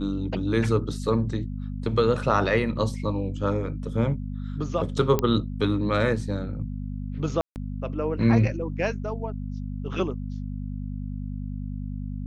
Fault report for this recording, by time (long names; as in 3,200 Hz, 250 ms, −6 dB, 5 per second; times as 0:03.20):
mains hum 50 Hz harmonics 5 −32 dBFS
0:05.19: click −10 dBFS
0:07.41–0:07.56: drop-out 149 ms